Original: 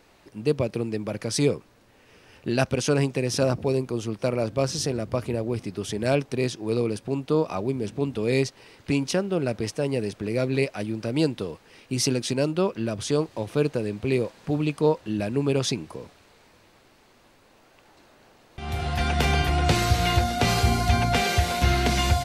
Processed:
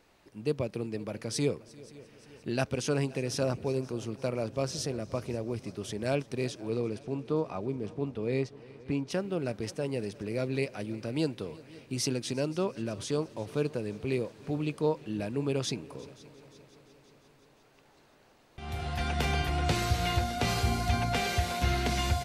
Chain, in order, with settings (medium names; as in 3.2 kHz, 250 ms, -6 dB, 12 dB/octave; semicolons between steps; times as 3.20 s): 6.67–9.10 s: low-pass 3.5 kHz -> 1.4 kHz 6 dB/octave; multi-head delay 175 ms, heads second and third, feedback 59%, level -22 dB; trim -7 dB